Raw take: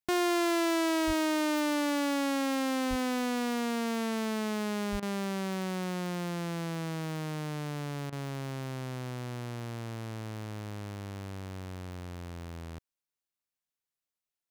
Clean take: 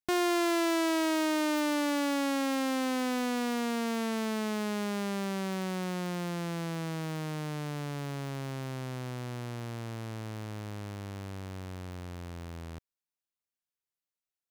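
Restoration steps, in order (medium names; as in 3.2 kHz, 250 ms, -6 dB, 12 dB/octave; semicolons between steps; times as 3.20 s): 1.06–1.18 s: high-pass 140 Hz 24 dB/octave; 2.89–3.01 s: high-pass 140 Hz 24 dB/octave; 4.91–5.03 s: high-pass 140 Hz 24 dB/octave; interpolate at 5.00/8.10 s, 24 ms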